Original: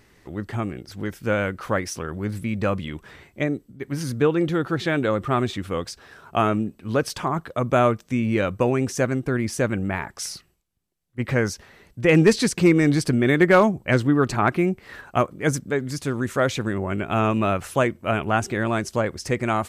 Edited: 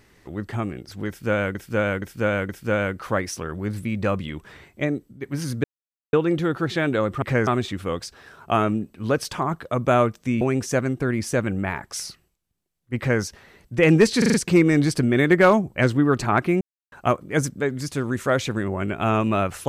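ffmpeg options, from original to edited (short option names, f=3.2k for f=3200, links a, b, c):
-filter_complex "[0:a]asplit=14[a][b][c][d][e][f][g][h][i][j][k][l][m][n];[a]atrim=end=1.552[o];[b]atrim=start=1.078:end=1.552[p];[c]atrim=start=1.078:end=1.552[q];[d]atrim=start=1.078:end=4.23,asetpts=PTS-STARTPTS,afade=t=out:st=3.148:d=0.004:c=hsin,apad=pad_dur=0.49[r];[e]atrim=start=4.23:end=5.322,asetpts=PTS-STARTPTS,afade=t=in:d=0.004:c=hsin[s];[f]atrim=start=11.228:end=11.482[t];[g]atrim=start=5.318:end=8.262[u];[h]atrim=start=8.668:end=12.482[v];[i]atrim=start=12.438:end=12.482[w];[j]atrim=start=12.438:end=12.482[x];[k]atrim=start=12.438:end=12.482[y];[l]atrim=start=12.438:end=14.71,asetpts=PTS-STARTPTS,afade=t=out:st=2.268:d=0.004:c=hsin[z];[m]atrim=start=14.71:end=15.02,asetpts=PTS-STARTPTS,volume=0[aa];[n]atrim=start=15.02,asetpts=PTS-STARTPTS,afade=t=in:d=0.004:c=hsin[ab];[o][p]acrossfade=d=0.004:c1=hsin:c2=hsin[ac];[ac][q]acrossfade=d=0.004:c1=hsin:c2=hsin[ad];[r][s]concat=n=2:v=0:a=1[ae];[ad][ae]acrossfade=d=0.004:c1=hsin:c2=hsin[af];[af][t]acrossfade=d=0.004:c1=hsin:c2=hsin[ag];[ag][u]acrossfade=d=0.004:c1=hsin:c2=hsin[ah];[ah][v]acrossfade=d=0.004:c1=hsin:c2=hsin[ai];[ai][w]acrossfade=d=0.004:c1=hsin:c2=hsin[aj];[aj][x]acrossfade=d=0.004:c1=hsin:c2=hsin[ak];[ak][y]acrossfade=d=0.004:c1=hsin:c2=hsin[al];[z][aa][ab]concat=n=3:v=0:a=1[am];[al][am]acrossfade=d=0.004:c1=hsin:c2=hsin"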